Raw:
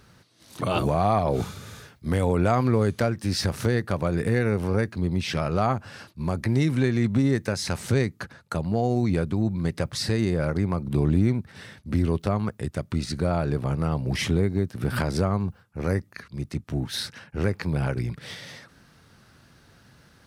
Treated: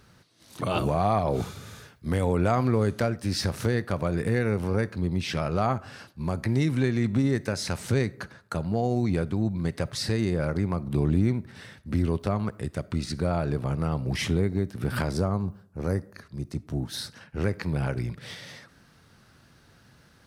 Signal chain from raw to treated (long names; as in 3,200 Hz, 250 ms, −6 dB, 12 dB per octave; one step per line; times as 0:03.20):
0:15.13–0:17.21: parametric band 2,300 Hz −7.5 dB 1.2 octaves
convolution reverb RT60 0.65 s, pre-delay 10 ms, DRR 19.5 dB
level −2 dB